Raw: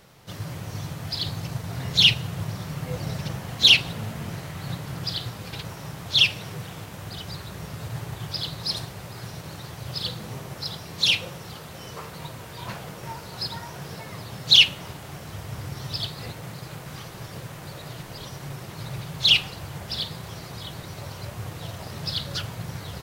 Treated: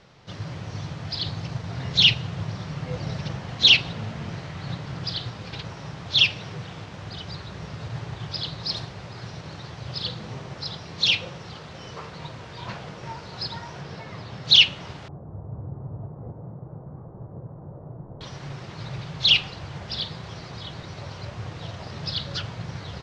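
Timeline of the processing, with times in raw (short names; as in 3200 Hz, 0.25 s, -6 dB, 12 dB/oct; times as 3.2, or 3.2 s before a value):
13.81–14.45 high shelf 4900 Hz -5 dB
15.08–18.21 Bessel low-pass 620 Hz, order 6
whole clip: LPF 5700 Hz 24 dB/oct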